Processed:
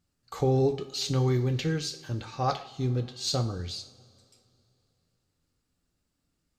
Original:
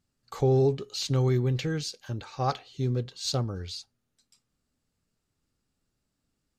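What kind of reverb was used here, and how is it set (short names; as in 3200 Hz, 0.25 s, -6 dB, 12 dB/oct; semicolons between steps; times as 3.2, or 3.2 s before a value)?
two-slope reverb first 0.44 s, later 2.9 s, from -21 dB, DRR 6.5 dB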